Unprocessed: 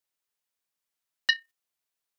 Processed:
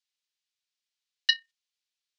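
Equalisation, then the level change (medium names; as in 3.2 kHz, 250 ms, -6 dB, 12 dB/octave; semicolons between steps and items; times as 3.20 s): band-pass filter 3.9 kHz, Q 0.97; distance through air 87 m; tilt EQ +3.5 dB/octave; 0.0 dB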